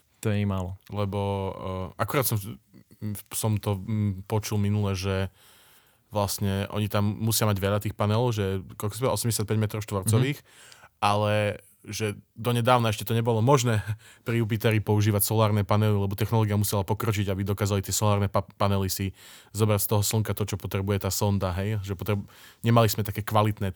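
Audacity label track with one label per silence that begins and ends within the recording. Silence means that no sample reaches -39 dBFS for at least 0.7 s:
5.280000	6.130000	silence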